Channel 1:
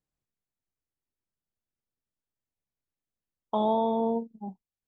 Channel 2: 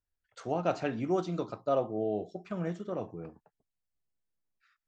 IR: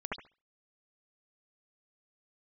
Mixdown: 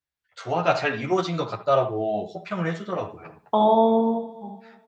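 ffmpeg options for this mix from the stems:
-filter_complex "[0:a]dynaudnorm=f=260:g=9:m=2.24,volume=0.266,asplit=3[s0][s1][s2];[s1]volume=0.398[s3];[s2]volume=0.126[s4];[1:a]equalizer=f=125:t=o:w=1:g=7,equalizer=f=250:t=o:w=1:g=-6,equalizer=f=1000:t=o:w=1:g=4,equalizer=f=2000:t=o:w=1:g=7,equalizer=f=4000:t=o:w=1:g=7,asplit=2[s5][s6];[s6]adelay=10.2,afreqshift=-2.9[s7];[s5][s7]amix=inputs=2:normalize=1,volume=0.841,asplit=2[s8][s9];[s9]volume=0.211[s10];[2:a]atrim=start_sample=2205[s11];[s3][s10]amix=inputs=2:normalize=0[s12];[s12][s11]afir=irnorm=-1:irlink=0[s13];[s4]aecho=0:1:292|584|876|1168|1460:1|0.37|0.137|0.0507|0.0187[s14];[s0][s8][s13][s14]amix=inputs=4:normalize=0,dynaudnorm=f=110:g=7:m=3.55,highpass=42,lowshelf=f=220:g=-5.5"

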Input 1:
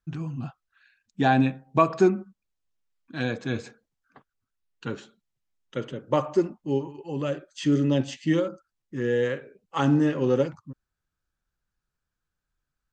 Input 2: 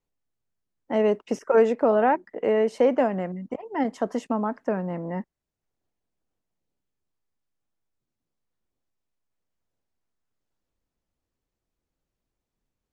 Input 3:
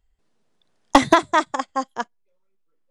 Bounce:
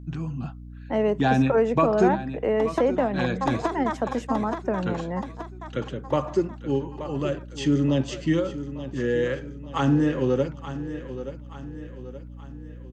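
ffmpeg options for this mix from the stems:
-filter_complex "[0:a]volume=1.19,asplit=2[s0][s1];[s1]volume=0.211[s2];[1:a]volume=1.06,asplit=2[s3][s4];[2:a]equalizer=f=590:w=0.31:g=10.5,acrossover=split=420[s5][s6];[s6]acompressor=threshold=0.501:ratio=6[s7];[s5][s7]amix=inputs=2:normalize=0,adelay=1650,volume=0.224,asplit=2[s8][s9];[s9]volume=0.668[s10];[s4]apad=whole_len=200989[s11];[s8][s11]sidechaincompress=threshold=0.0316:ratio=8:attack=16:release=210[s12];[s2][s10]amix=inputs=2:normalize=0,aecho=0:1:876|1752|2628|3504|4380|5256:1|0.46|0.212|0.0973|0.0448|0.0206[s13];[s0][s3][s12][s13]amix=inputs=4:normalize=0,acrossover=split=230[s14][s15];[s15]acompressor=threshold=0.0631:ratio=1.5[s16];[s14][s16]amix=inputs=2:normalize=0,aeval=exprs='val(0)+0.0112*(sin(2*PI*60*n/s)+sin(2*PI*2*60*n/s)/2+sin(2*PI*3*60*n/s)/3+sin(2*PI*4*60*n/s)/4+sin(2*PI*5*60*n/s)/5)':c=same"

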